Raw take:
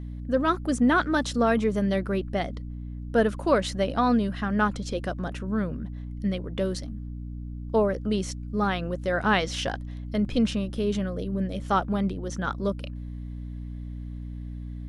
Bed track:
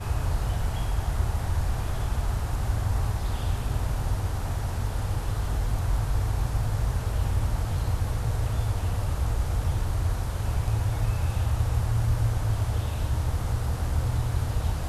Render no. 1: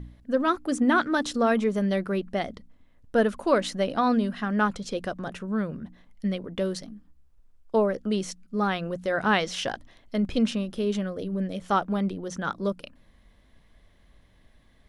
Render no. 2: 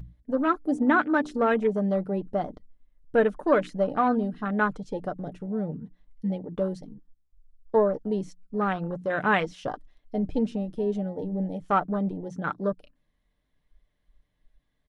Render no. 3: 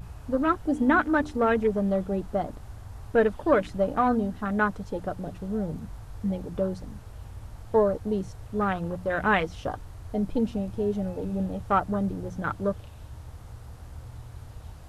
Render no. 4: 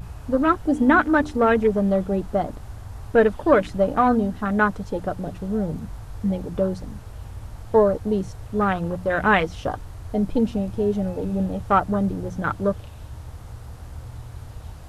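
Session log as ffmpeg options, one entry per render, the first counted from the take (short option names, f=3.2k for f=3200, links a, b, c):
-af "bandreject=f=60:t=h:w=4,bandreject=f=120:t=h:w=4,bandreject=f=180:t=h:w=4,bandreject=f=240:t=h:w=4,bandreject=f=300:t=h:w=4"
-af "afwtdn=0.0251,aecho=1:1:6.7:0.35"
-filter_complex "[1:a]volume=-16dB[a];[0:a][a]amix=inputs=2:normalize=0"
-af "volume=5dB"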